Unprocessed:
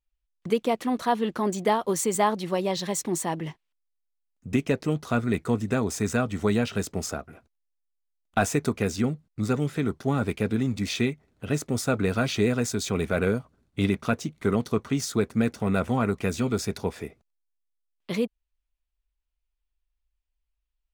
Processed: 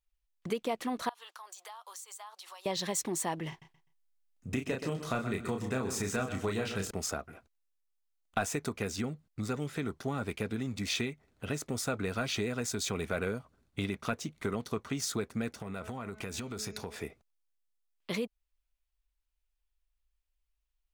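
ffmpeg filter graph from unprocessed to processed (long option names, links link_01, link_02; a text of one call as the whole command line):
ffmpeg -i in.wav -filter_complex "[0:a]asettb=1/sr,asplit=3[link_01][link_02][link_03];[link_01]atrim=end=1.094[link_04];[link_02]atrim=start=1.09:end=2.66,asetpts=PTS-STARTPTS,afade=type=in:duration=0.004:curve=qsin,afade=type=out:start_time=1.566:duration=0.004:curve=qsin,highpass=frequency=930:width=0.5412,highpass=frequency=930:width=1.3066,equalizer=frequency=2000:width_type=o:width=1:gain=-9,acompressor=threshold=-44dB:ratio=6:attack=3.2:release=140:knee=1:detection=peak[link_05];[link_03]atrim=start=2.656[link_06];[link_04][link_05]acrossfade=duration=0.004:curve1=hsin:curve2=qsin[link_07];[link_07][link_06]acrossfade=duration=0.004:curve1=qsin:curve2=hsin,asettb=1/sr,asplit=3[link_08][link_09][link_10];[link_08]atrim=end=3.494[link_11];[link_09]atrim=start=3.49:end=6.91,asetpts=PTS-STARTPTS,afade=type=in:duration=0.004:curve=qsin,afade=type=out:start_time=3.416:duration=0.004:curve=qsin,asplit=2[link_12][link_13];[link_13]adelay=31,volume=-4.5dB[link_14];[link_12][link_14]amix=inputs=2:normalize=0,atrim=end_sample=150822,aecho=1:1:126|252|378:0.251|0.0603|0.0145,atrim=end_sample=150822[link_15];[link_10]atrim=start=6.906[link_16];[link_11][link_15]acrossfade=duration=0.004:curve1=hsin:curve2=qsin[link_17];[link_17][link_16]acrossfade=duration=0.004:curve1=qsin:curve2=hsin,asettb=1/sr,asplit=3[link_18][link_19][link_20];[link_18]atrim=end=15.584[link_21];[link_19]atrim=start=15.58:end=16.96,asetpts=PTS-STARTPTS,afade=type=in:duration=0.004:curve=qsin,afade=type=out:start_time=1.376:duration=0.004:curve=qsin,bandreject=frequency=214.5:width_type=h:width=4,bandreject=frequency=429:width_type=h:width=4,bandreject=frequency=643.5:width_type=h:width=4,bandreject=frequency=858:width_type=h:width=4,bandreject=frequency=1072.5:width_type=h:width=4,bandreject=frequency=1287:width_type=h:width=4,bandreject=frequency=1501.5:width_type=h:width=4,bandreject=frequency=1716:width_type=h:width=4,bandreject=frequency=1930.5:width_type=h:width=4,bandreject=frequency=2145:width_type=h:width=4,bandreject=frequency=2359.5:width_type=h:width=4,bandreject=frequency=2574:width_type=h:width=4,bandreject=frequency=2788.5:width_type=h:width=4,bandreject=frequency=3003:width_type=h:width=4,bandreject=frequency=3217.5:width_type=h:width=4,bandreject=frequency=3432:width_type=h:width=4,bandreject=frequency=3646.5:width_type=h:width=4,bandreject=frequency=3861:width_type=h:width=4,bandreject=frequency=4075.5:width_type=h:width=4,bandreject=frequency=4290:width_type=h:width=4,bandreject=frequency=4504.5:width_type=h:width=4,bandreject=frequency=4719:width_type=h:width=4,bandreject=frequency=4933.5:width_type=h:width=4,bandreject=frequency=5148:width_type=h:width=4,bandreject=frequency=5362.5:width_type=h:width=4,bandreject=frequency=5577:width_type=h:width=4,bandreject=frequency=5791.5:width_type=h:width=4,bandreject=frequency=6006:width_type=h:width=4,bandreject=frequency=6220.5:width_type=h:width=4,bandreject=frequency=6435:width_type=h:width=4,bandreject=frequency=6649.5:width_type=h:width=4,bandreject=frequency=6864:width_type=h:width=4,bandreject=frequency=7078.5:width_type=h:width=4,acompressor=threshold=-31dB:ratio=10:attack=3.2:release=140:knee=1:detection=peak[link_22];[link_20]atrim=start=16.956[link_23];[link_21][link_22]acrossfade=duration=0.004:curve1=hsin:curve2=qsin[link_24];[link_24][link_23]acrossfade=duration=0.004:curve1=qsin:curve2=hsin,lowshelf=frequency=74:gain=7.5,acompressor=threshold=-27dB:ratio=3,lowshelf=frequency=390:gain=-7.5" out.wav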